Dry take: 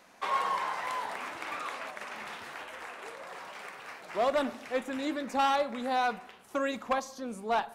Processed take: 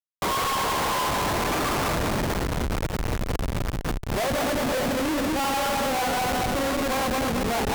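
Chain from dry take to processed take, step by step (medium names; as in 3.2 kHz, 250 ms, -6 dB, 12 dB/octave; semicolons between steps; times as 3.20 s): backward echo that repeats 111 ms, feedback 71%, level -1 dB; Schmitt trigger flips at -33.5 dBFS; Chebyshev shaper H 2 -17 dB, 7 -17 dB, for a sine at -23.5 dBFS; trim +4 dB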